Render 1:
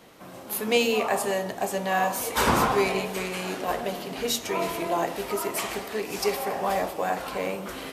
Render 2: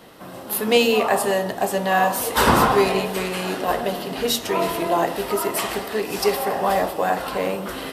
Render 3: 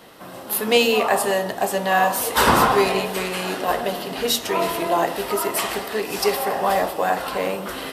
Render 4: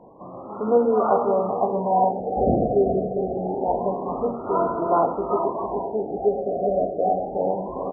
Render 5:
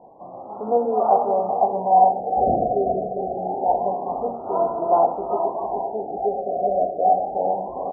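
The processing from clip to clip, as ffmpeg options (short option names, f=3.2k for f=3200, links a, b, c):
-af "equalizer=f=6.6k:t=o:w=0.36:g=-6,bandreject=f=2.3k:w=10,volume=6dB"
-af "lowshelf=f=420:g=-4.5,volume=1.5dB"
-af "aecho=1:1:403|806|1209|1612|2015|2418:0.355|0.174|0.0852|0.0417|0.0205|0.01,afftfilt=real='re*lt(b*sr/1024,740*pow(1500/740,0.5+0.5*sin(2*PI*0.26*pts/sr)))':imag='im*lt(b*sr/1024,740*pow(1500/740,0.5+0.5*sin(2*PI*0.26*pts/sr)))':win_size=1024:overlap=0.75"
-af "lowpass=f=770:t=q:w=4.4,volume=-6.5dB"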